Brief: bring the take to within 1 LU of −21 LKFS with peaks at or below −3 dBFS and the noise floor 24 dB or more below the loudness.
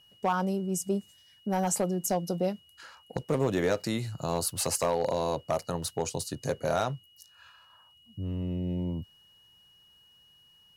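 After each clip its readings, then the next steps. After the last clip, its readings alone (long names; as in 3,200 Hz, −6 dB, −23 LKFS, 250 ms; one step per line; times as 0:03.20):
share of clipped samples 0.4%; peaks flattened at −19.0 dBFS; interfering tone 2,900 Hz; level of the tone −58 dBFS; integrated loudness −31.0 LKFS; sample peak −19.0 dBFS; target loudness −21.0 LKFS
→ clipped peaks rebuilt −19 dBFS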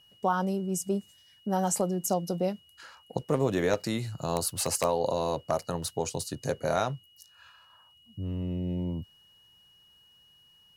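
share of clipped samples 0.0%; interfering tone 2,900 Hz; level of the tone −58 dBFS
→ notch filter 2,900 Hz, Q 30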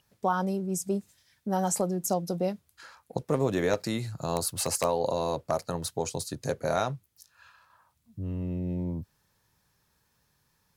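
interfering tone none found; integrated loudness −30.5 LKFS; sample peak −10.0 dBFS; target loudness −21.0 LKFS
→ level +9.5 dB
brickwall limiter −3 dBFS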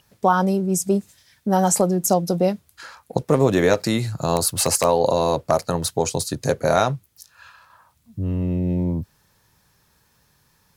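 integrated loudness −21.0 LKFS; sample peak −3.0 dBFS; background noise floor −63 dBFS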